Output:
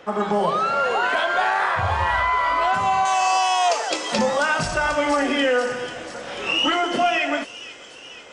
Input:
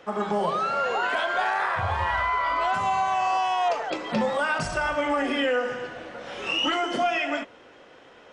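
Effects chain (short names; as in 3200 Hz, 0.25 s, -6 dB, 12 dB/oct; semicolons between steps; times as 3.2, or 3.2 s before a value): 3.05–4.19 tone controls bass -11 dB, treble +15 dB; thin delay 0.489 s, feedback 66%, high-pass 4600 Hz, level -5 dB; gain +4.5 dB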